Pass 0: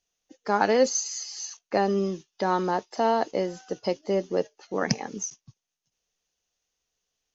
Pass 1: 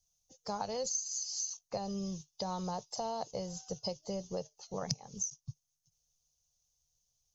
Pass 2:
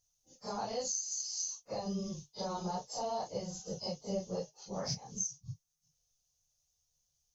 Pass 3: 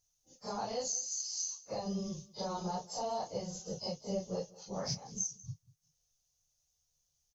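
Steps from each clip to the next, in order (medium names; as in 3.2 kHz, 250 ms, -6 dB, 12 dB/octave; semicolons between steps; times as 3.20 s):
FFT filter 150 Hz 0 dB, 300 Hz -29 dB, 500 Hz -15 dB, 720 Hz -14 dB, 1.1 kHz -16 dB, 1.7 kHz -29 dB, 4.2 kHz -9 dB, 6.2 kHz -3 dB; harmonic-percussive split percussive +4 dB; compression 5:1, threshold -39 dBFS, peak gain reduction 15.5 dB; trim +5 dB
phase randomisation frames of 100 ms
delay 191 ms -21 dB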